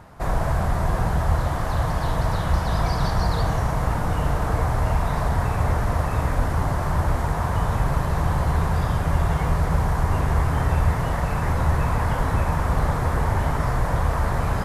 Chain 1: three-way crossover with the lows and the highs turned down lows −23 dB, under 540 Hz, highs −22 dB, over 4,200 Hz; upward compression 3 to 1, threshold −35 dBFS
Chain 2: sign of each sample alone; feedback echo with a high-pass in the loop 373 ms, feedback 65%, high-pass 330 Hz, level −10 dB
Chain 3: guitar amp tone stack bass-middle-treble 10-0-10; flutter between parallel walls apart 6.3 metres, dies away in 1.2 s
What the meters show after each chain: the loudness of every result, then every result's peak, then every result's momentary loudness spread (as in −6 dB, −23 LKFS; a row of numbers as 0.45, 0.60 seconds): −30.5, −21.5, −28.0 LKFS; −17.5, −14.0, −10.5 dBFS; 1, 1, 3 LU